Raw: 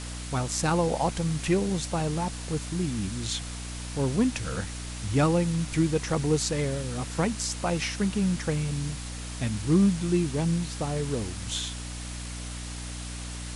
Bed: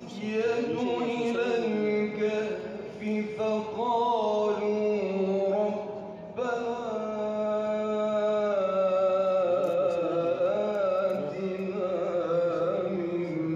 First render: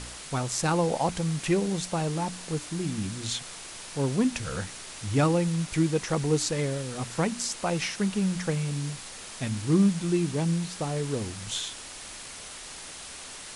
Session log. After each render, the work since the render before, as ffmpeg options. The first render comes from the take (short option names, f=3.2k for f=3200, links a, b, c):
-af "bandreject=f=60:t=h:w=4,bandreject=f=120:t=h:w=4,bandreject=f=180:t=h:w=4,bandreject=f=240:t=h:w=4,bandreject=f=300:t=h:w=4"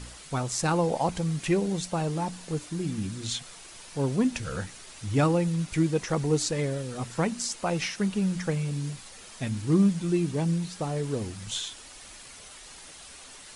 -af "afftdn=nr=7:nf=-42"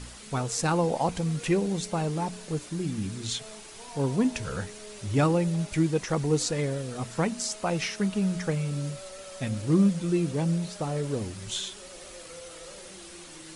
-filter_complex "[1:a]volume=-20dB[a];[0:a][a]amix=inputs=2:normalize=0"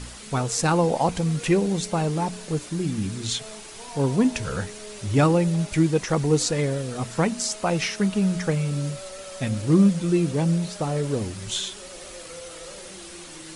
-af "volume=4.5dB"